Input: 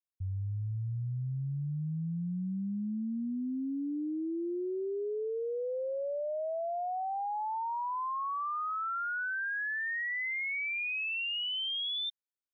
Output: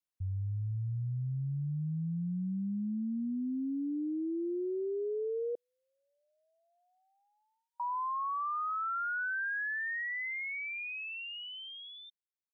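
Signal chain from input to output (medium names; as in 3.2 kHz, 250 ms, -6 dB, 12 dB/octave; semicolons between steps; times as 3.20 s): fade out at the end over 3.13 s; 5.55–7.80 s: elliptic high-pass 1.5 kHz, stop band 40 dB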